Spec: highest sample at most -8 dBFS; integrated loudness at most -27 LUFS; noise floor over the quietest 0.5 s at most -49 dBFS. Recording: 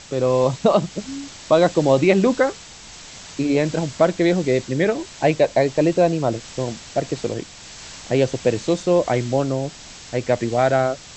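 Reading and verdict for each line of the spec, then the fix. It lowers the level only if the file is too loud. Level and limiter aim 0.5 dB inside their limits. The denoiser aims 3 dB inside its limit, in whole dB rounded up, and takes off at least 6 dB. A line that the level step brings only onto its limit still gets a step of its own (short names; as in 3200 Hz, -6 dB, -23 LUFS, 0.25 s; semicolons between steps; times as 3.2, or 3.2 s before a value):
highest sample -3.5 dBFS: fail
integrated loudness -20.0 LUFS: fail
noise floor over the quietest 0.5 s -41 dBFS: fail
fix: denoiser 6 dB, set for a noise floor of -41 dBFS; gain -7.5 dB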